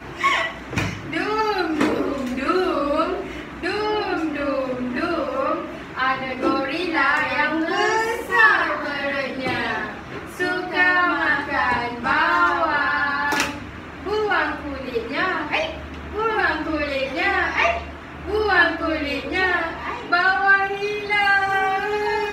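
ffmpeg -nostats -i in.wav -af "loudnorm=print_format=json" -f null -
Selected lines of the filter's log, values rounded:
"input_i" : "-20.7",
"input_tp" : "-2.2",
"input_lra" : "3.8",
"input_thresh" : "-30.9",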